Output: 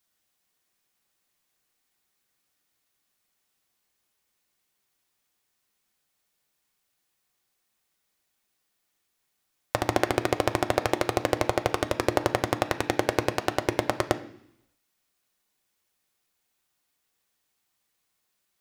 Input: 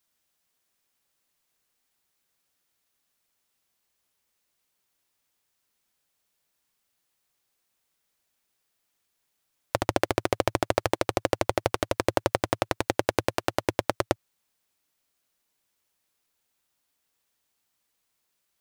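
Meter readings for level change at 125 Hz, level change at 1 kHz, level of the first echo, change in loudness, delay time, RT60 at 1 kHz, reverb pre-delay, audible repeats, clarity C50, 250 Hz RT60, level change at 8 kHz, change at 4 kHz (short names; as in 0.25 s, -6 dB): +1.0 dB, +1.0 dB, none, +1.0 dB, none, 0.70 s, 3 ms, none, 14.0 dB, 0.85 s, 0.0 dB, +0.5 dB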